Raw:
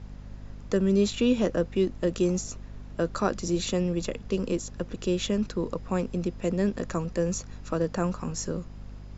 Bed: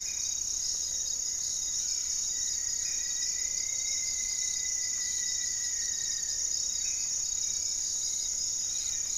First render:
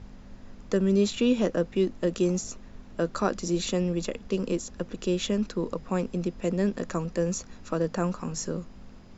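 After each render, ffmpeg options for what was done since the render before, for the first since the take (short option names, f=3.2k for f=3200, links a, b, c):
-af "bandreject=f=50:t=h:w=6,bandreject=f=100:t=h:w=6,bandreject=f=150:t=h:w=6"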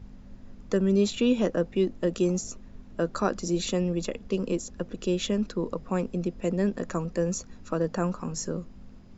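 -af "afftdn=nr=6:nf=-48"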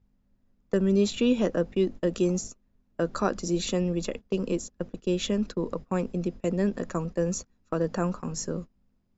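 -af "agate=range=-22dB:threshold=-35dB:ratio=16:detection=peak"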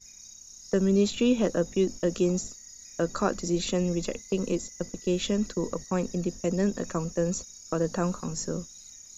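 -filter_complex "[1:a]volume=-15.5dB[a];[0:a][a]amix=inputs=2:normalize=0"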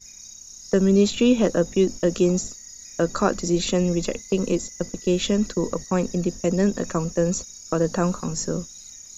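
-af "volume=5.5dB"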